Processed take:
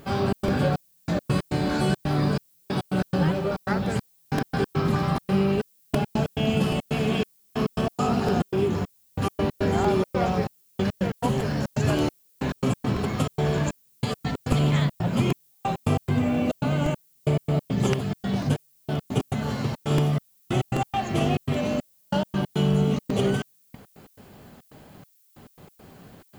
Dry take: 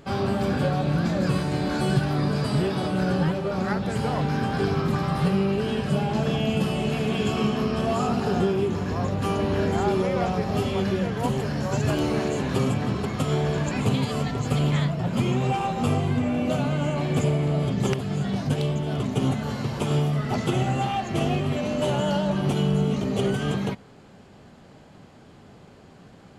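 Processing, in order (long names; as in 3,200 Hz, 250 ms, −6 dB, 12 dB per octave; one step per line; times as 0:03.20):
gate pattern "xxx.xxx...x.x.x" 139 BPM −60 dB
background noise violet −62 dBFS
regular buffer underruns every 0.78 s, samples 128, repeat, from 0:00.48
level +1 dB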